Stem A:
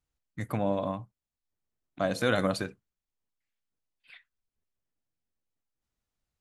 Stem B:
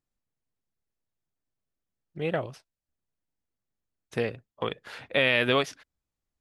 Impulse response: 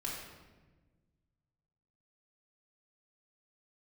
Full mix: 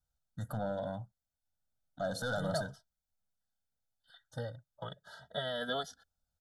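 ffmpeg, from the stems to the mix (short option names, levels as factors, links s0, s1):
-filter_complex "[0:a]asoftclip=type=tanh:threshold=0.0596,alimiter=level_in=1.5:limit=0.0631:level=0:latency=1:release=82,volume=0.668,volume=0.562[s0];[1:a]asplit=2[s1][s2];[s2]adelay=2.6,afreqshift=0.39[s3];[s1][s3]amix=inputs=2:normalize=1,adelay=200,volume=0.398[s4];[s0][s4]amix=inputs=2:normalize=0,asuperstop=centerf=2400:order=20:qfactor=2.1,aecho=1:1:1.4:0.91"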